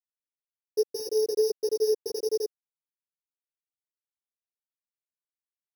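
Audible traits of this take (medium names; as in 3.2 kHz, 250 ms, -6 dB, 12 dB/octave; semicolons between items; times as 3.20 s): a buzz of ramps at a fixed pitch in blocks of 8 samples; tremolo saw up 10 Hz, depth 30%; a quantiser's noise floor 10-bit, dither none; a shimmering, thickened sound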